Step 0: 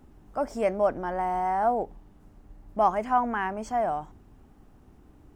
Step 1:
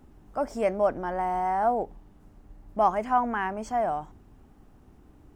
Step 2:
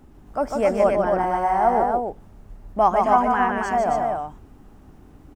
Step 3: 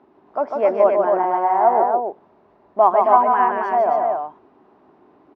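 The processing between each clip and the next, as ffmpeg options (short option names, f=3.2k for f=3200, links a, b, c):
-af anull
-af "aecho=1:1:148.7|271.1:0.631|0.631,volume=4.5dB"
-af "highpass=290,equalizer=f=380:t=q:w=4:g=8,equalizer=f=650:t=q:w=4:g=7,equalizer=f=1k:t=q:w=4:g=9,equalizer=f=3.1k:t=q:w=4:g=-4,lowpass=f=3.9k:w=0.5412,lowpass=f=3.9k:w=1.3066,volume=-2.5dB"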